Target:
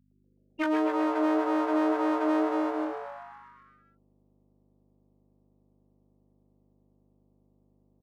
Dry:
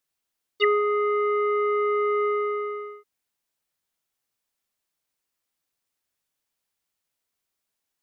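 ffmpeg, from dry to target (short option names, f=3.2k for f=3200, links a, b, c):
-filter_complex "[0:a]afftfilt=real='re*gte(hypot(re,im),0.126)':imag='im*gte(hypot(re,im),0.126)':win_size=1024:overlap=0.75,asetrate=33038,aresample=44100,atempo=1.33484,acrossover=split=440|3000[a][b][c];[a]acompressor=threshold=-27dB:ratio=5[d];[d][b][c]amix=inputs=3:normalize=0,equalizer=f=640:t=o:w=0.96:g=13,flanger=delay=20:depth=2.4:speed=1.9,acompressor=threshold=-23dB:ratio=8,aeval=exprs='val(0)+0.000708*(sin(2*PI*50*n/s)+sin(2*PI*2*50*n/s)/2+sin(2*PI*3*50*n/s)/3+sin(2*PI*4*50*n/s)/4+sin(2*PI*5*50*n/s)/5)':c=same,equalizer=f=500:t=o:w=1:g=7,equalizer=f=1k:t=o:w=1:g=-12,equalizer=f=2k:t=o:w=1:g=-7,equalizer=f=4k:t=o:w=1:g=-9,aeval=exprs='clip(val(0),-1,0.00708)':c=same,highpass=f=340:p=1,asplit=2[e][f];[f]asplit=8[g][h][i][j][k][l][m][n];[g]adelay=130,afreqshift=130,volume=-8dB[o];[h]adelay=260,afreqshift=260,volume=-12dB[p];[i]adelay=390,afreqshift=390,volume=-16dB[q];[j]adelay=520,afreqshift=520,volume=-20dB[r];[k]adelay=650,afreqshift=650,volume=-24.1dB[s];[l]adelay=780,afreqshift=780,volume=-28.1dB[t];[m]adelay=910,afreqshift=910,volume=-32.1dB[u];[n]adelay=1040,afreqshift=1040,volume=-36.1dB[v];[o][p][q][r][s][t][u][v]amix=inputs=8:normalize=0[w];[e][w]amix=inputs=2:normalize=0,volume=8.5dB"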